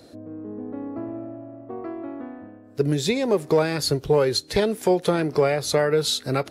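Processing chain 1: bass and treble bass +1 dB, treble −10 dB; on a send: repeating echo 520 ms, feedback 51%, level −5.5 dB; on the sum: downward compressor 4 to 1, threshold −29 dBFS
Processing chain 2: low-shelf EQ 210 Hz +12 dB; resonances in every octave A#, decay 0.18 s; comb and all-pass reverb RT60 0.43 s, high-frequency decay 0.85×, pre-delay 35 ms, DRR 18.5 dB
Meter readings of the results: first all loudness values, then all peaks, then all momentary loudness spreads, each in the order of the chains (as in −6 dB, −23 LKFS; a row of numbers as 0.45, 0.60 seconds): −32.5, −31.0 LKFS; −16.0, −13.5 dBFS; 5, 18 LU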